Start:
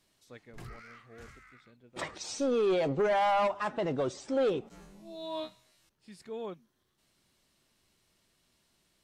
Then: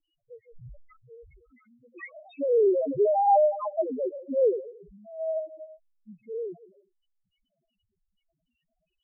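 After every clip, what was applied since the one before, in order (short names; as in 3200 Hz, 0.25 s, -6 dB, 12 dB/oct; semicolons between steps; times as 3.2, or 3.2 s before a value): digital reverb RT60 0.61 s, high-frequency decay 0.6×, pre-delay 0.1 s, DRR 12.5 dB; LFO low-pass square 2.6 Hz 740–2800 Hz; loudest bins only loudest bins 1; gain +8.5 dB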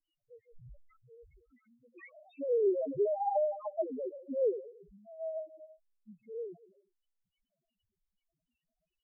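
rotary speaker horn 7 Hz; gain -5.5 dB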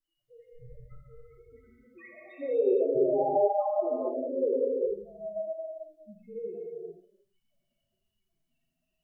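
non-linear reverb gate 0.49 s flat, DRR -4.5 dB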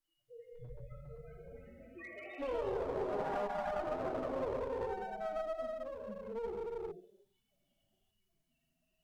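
compressor 8:1, threshold -33 dBFS, peak gain reduction 14 dB; one-sided clip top -43.5 dBFS; echoes that change speed 0.51 s, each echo +3 st, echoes 2, each echo -6 dB; gain +1 dB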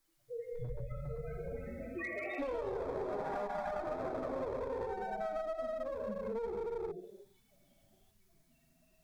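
notch 2900 Hz, Q 5; compressor 5:1, threshold -48 dBFS, peak gain reduction 14 dB; gain +11.5 dB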